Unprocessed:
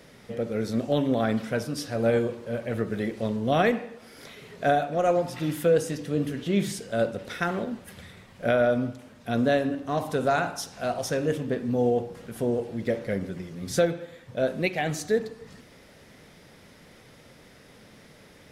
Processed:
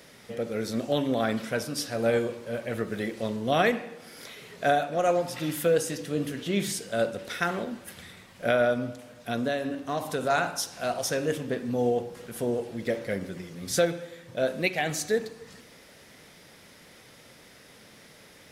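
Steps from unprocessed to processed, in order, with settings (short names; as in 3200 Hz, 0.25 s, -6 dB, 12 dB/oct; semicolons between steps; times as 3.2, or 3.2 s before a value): tilt +1.5 dB/oct; 8.72–10.3 compressor 4:1, threshold -25 dBFS, peak gain reduction 6 dB; on a send: reverb RT60 1.9 s, pre-delay 3 ms, DRR 21 dB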